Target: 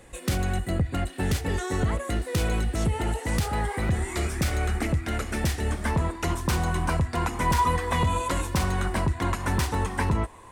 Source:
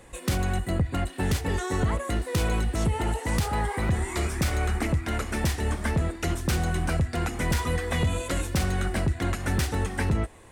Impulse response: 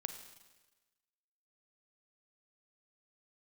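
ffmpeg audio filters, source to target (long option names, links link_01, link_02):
-af "asetnsamples=nb_out_samples=441:pad=0,asendcmd='5.86 equalizer g 14',equalizer=frequency=1000:width=4.9:gain=-4"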